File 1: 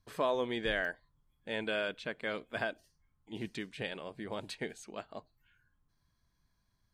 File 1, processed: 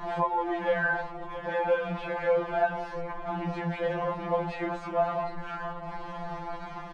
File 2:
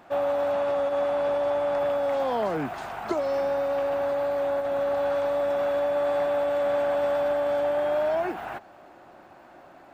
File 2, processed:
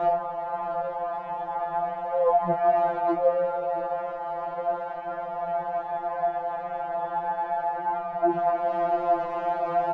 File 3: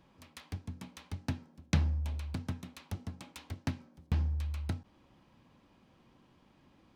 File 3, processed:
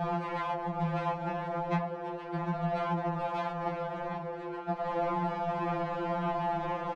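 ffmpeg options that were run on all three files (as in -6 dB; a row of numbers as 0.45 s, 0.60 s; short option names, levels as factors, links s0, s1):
-filter_complex "[0:a]aeval=exprs='val(0)+0.5*0.0266*sgn(val(0))':c=same,lowpass=1800,equalizer=f=780:t=o:w=0.97:g=14.5,acrossover=split=160|460[s0][s1][s2];[s0]acompressor=threshold=0.00708:ratio=4[s3];[s1]acompressor=threshold=0.0224:ratio=4[s4];[s2]acompressor=threshold=0.0562:ratio=4[s5];[s3][s4][s5]amix=inputs=3:normalize=0,flanger=delay=15.5:depth=8:speed=0.37,afreqshift=-19,aecho=1:1:667|1334|2001|2668|3335:0.178|0.096|0.0519|0.028|0.0151,afftfilt=real='re*2.83*eq(mod(b,8),0)':imag='im*2.83*eq(mod(b,8),0)':win_size=2048:overlap=0.75,volume=2"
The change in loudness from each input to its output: +6.5 LU, -1.5 LU, +4.5 LU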